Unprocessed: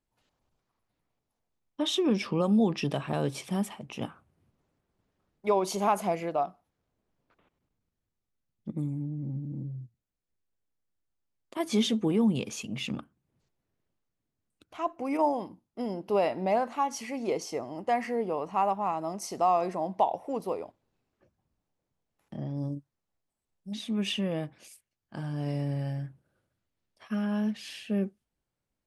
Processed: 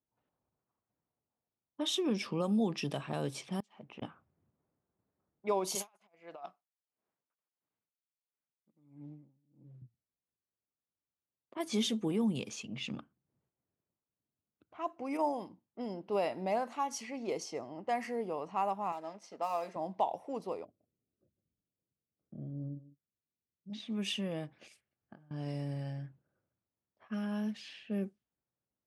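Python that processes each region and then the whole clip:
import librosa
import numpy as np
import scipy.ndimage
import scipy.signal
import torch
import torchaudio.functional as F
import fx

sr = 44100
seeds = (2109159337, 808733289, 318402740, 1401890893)

y = fx.chain(x, sr, fx.low_shelf(hz=130.0, db=-10.5),
    fx.gate_flip(shuts_db=-27.0, range_db=-27),
    fx.resample_linear(factor=3), at=(3.6, 4.02))
y = fx.chain(y, sr, fx.tilt_eq(slope=4.5),
    fx.over_compress(threshold_db=-34.0, ratio=-0.5),
    fx.tremolo_db(hz=1.5, depth_db=28), at=(5.75, 9.82))
y = fx.chain(y, sr, fx.law_mismatch(coded='A'),
    fx.highpass(hz=260.0, slope=12),
    fx.notch_comb(f0_hz=370.0), at=(18.92, 19.76))
y = fx.chain(y, sr, fx.moving_average(points=48),
    fx.echo_single(ms=150, db=-16.0), at=(20.65, 23.7))
y = fx.chain(y, sr, fx.notch(hz=980.0, q=6.7),
    fx.over_compress(threshold_db=-49.0, ratio=-1.0), at=(24.61, 25.31))
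y = scipy.signal.sosfilt(scipy.signal.butter(2, 83.0, 'highpass', fs=sr, output='sos'), y)
y = fx.high_shelf(y, sr, hz=4100.0, db=6.5)
y = fx.env_lowpass(y, sr, base_hz=1300.0, full_db=-25.0)
y = y * 10.0 ** (-6.5 / 20.0)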